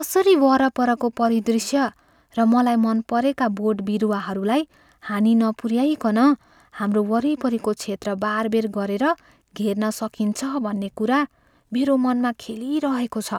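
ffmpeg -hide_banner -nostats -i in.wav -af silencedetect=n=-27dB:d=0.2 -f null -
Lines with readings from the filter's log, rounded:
silence_start: 1.89
silence_end: 2.37 | silence_duration: 0.49
silence_start: 4.63
silence_end: 5.07 | silence_duration: 0.44
silence_start: 6.34
silence_end: 6.79 | silence_duration: 0.44
silence_start: 9.13
silence_end: 9.56 | silence_duration: 0.43
silence_start: 11.25
silence_end: 11.73 | silence_duration: 0.48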